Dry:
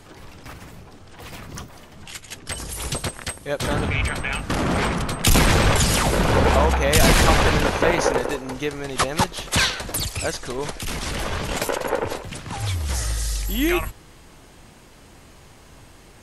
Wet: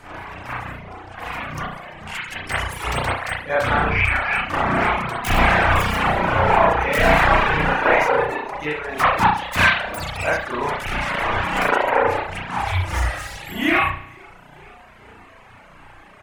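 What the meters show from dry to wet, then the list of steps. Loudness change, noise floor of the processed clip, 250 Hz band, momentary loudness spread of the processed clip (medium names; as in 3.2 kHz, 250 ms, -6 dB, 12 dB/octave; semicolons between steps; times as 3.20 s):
+2.0 dB, -46 dBFS, -2.0 dB, 15 LU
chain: self-modulated delay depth 0.11 ms; on a send: frequency-shifting echo 454 ms, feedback 51%, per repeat +32 Hz, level -22.5 dB; on the sum: spring tank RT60 1 s, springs 33 ms, chirp 35 ms, DRR -9.5 dB; reverb removal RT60 0.91 s; high-order bell 1.3 kHz +9 dB 2.3 oct; in parallel at 0 dB: gain riding 2 s; on the sum: trim -16 dB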